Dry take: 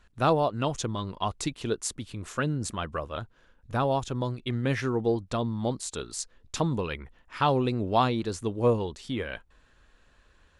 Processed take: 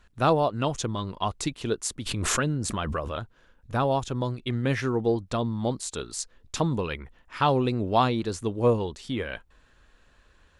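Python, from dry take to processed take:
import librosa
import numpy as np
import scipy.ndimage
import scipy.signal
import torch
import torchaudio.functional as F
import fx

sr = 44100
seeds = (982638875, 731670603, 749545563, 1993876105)

y = fx.pre_swell(x, sr, db_per_s=23.0, at=(2.05, 3.14), fade=0.02)
y = F.gain(torch.from_numpy(y), 1.5).numpy()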